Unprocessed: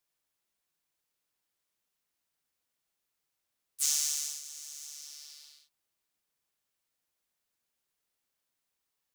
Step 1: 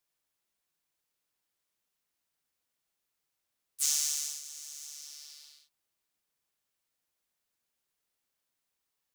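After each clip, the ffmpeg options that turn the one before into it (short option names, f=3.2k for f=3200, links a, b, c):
-af anull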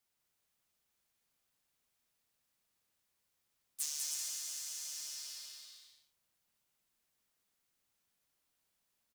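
-filter_complex "[0:a]acompressor=threshold=-35dB:ratio=8,afreqshift=-250,asplit=2[a][b];[b]aecho=0:1:200|320|392|435.2|461.1:0.631|0.398|0.251|0.158|0.1[c];[a][c]amix=inputs=2:normalize=0"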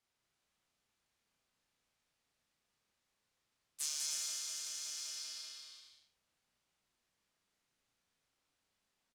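-filter_complex "[0:a]adynamicsmooth=sensitivity=7.5:basefreq=7.8k,asplit=2[a][b];[b]adelay=33,volume=-3dB[c];[a][c]amix=inputs=2:normalize=0,volume=1dB"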